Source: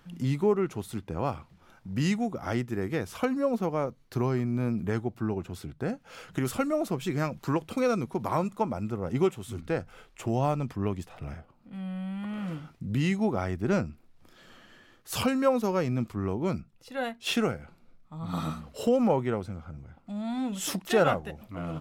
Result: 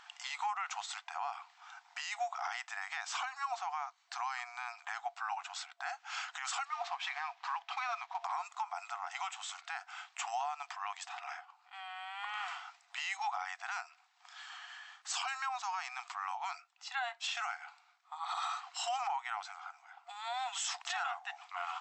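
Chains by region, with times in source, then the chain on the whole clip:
6.65–8.24 CVSD 64 kbps + air absorption 200 m + notch 1400 Hz
whole clip: FFT band-pass 690–8100 Hz; compressor 5:1, threshold -37 dBFS; limiter -34.5 dBFS; gain +7 dB

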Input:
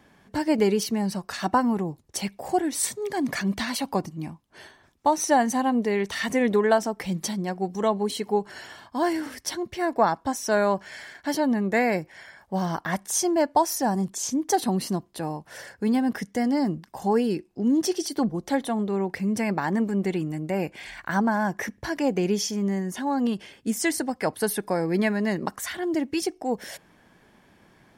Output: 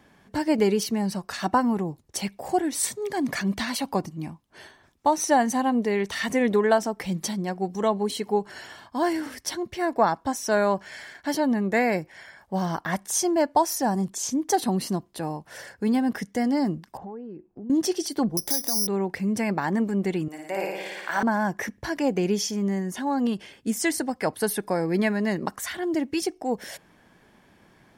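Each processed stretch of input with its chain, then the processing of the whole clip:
16.97–17.7 LPF 1100 Hz + compressor 4:1, threshold -38 dBFS
18.37–18.87 compressor 10:1, threshold -30 dBFS + careless resampling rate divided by 8×, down filtered, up zero stuff
20.28–21.23 HPF 490 Hz + flutter echo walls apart 9.6 m, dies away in 1.3 s
whole clip: dry

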